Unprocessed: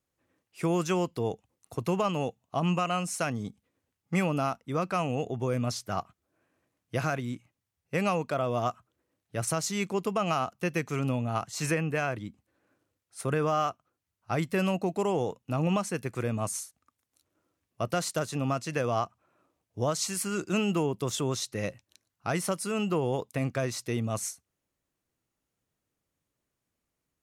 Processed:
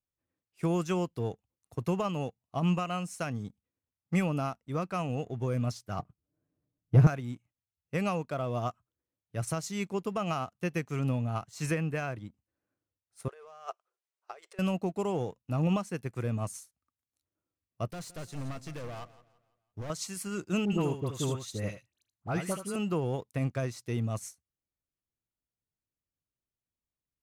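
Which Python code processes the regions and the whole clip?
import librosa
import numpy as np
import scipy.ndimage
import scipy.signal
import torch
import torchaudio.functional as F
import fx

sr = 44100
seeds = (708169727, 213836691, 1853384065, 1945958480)

y = fx.chain(x, sr, fx.tilt_shelf(db=10.0, hz=760.0),
    fx.comb(ms=6.7, depth=0.46), at=(5.99, 7.07))
y = fx.chain(y, sr, fx.over_compress(threshold_db=-33.0, ratio=-0.5),
    fx.brickwall_bandpass(low_hz=350.0, high_hz=9800.0), at=(13.28, 14.59))
y = fx.chain(y, sr, fx.overload_stage(gain_db=32.5),
    fx.echo_feedback(ms=168, feedback_pct=45, wet_db=-13), at=(17.86, 19.9))
y = fx.chain(y, sr, fx.notch(hz=5400.0, q=8.9),
    fx.dispersion(late='highs', ms=66.0, hz=1500.0),
    fx.echo_single(ms=78, db=-7.0), at=(20.65, 22.76))
y = fx.low_shelf(y, sr, hz=130.0, db=10.5)
y = fx.leveller(y, sr, passes=1)
y = fx.upward_expand(y, sr, threshold_db=-34.0, expansion=1.5)
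y = y * 10.0 ** (-3.5 / 20.0)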